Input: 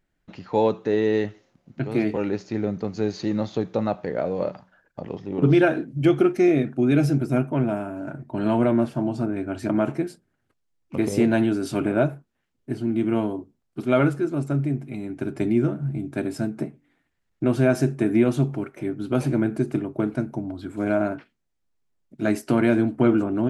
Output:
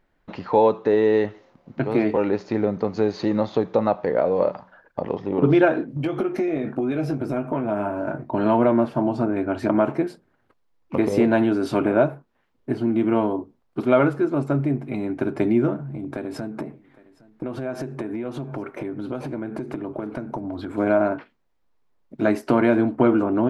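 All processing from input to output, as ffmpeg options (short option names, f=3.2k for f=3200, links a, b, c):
-filter_complex "[0:a]asettb=1/sr,asplit=3[a][b][c];[a]atrim=end=5.914[d];[b]atrim=start=5.91:end=8.3,asetpts=PTS-STARTPTS,afade=t=in:d=0.004:c=qsin,afade=t=out:st=2.386:d=0.004:c=qsin,acompressor=threshold=-25dB:ratio=10:attack=3.2:release=140:knee=1:detection=peak,asplit=2[e][f];[f]adelay=19,volume=-8dB[g];[e][g]amix=inputs=2:normalize=0,atrim=end_sample=105399[h];[c]atrim=start=8.296[i];[d][h]acrossfade=d=0.004:c1=hsin:c2=qsin[j];[j][i]acrossfade=d=0.004:c1=qsin:c2=hsin,asettb=1/sr,asplit=3[k][l][m];[k]atrim=end=15.764[n];[l]atrim=start=15.76:end=20.78,asetpts=PTS-STARTPTS,afade=t=in:d=0.004:c=qsin,afade=t=out:st=5.016:d=0.004:c=qsin,acompressor=threshold=-32dB:ratio=12:attack=3.2:release=140:knee=1:detection=peak,aecho=1:1:812:0.0708,atrim=end_sample=221382[o];[m]atrim=start=20.776[p];[n][o]acrossfade=d=0.004:c1=hsin:c2=qsin[q];[q][p]acrossfade=d=0.004:c1=qsin:c2=hsin,equalizer=f=250:t=o:w=1:g=4,equalizer=f=500:t=o:w=1:g=8,equalizer=f=1k:t=o:w=1:g=11,equalizer=f=2k:t=o:w=1:g=4,equalizer=f=4k:t=o:w=1:g=4,equalizer=f=8k:t=o:w=1:g=-5,acompressor=threshold=-25dB:ratio=1.5,lowshelf=f=72:g=7.5"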